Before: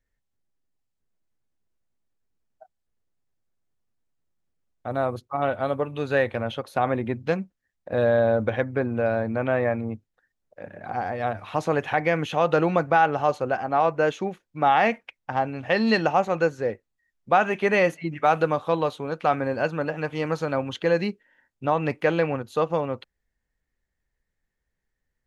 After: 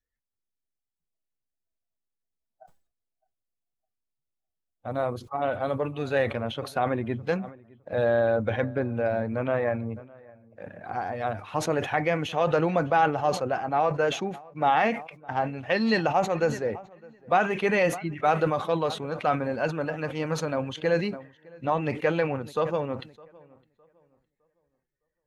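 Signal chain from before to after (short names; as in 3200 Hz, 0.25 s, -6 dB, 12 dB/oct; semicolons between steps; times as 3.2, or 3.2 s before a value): bin magnitudes rounded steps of 15 dB; darkening echo 0.61 s, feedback 29%, low-pass 2500 Hz, level -24 dB; spectral noise reduction 9 dB; sustainer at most 120 dB/s; gain -2.5 dB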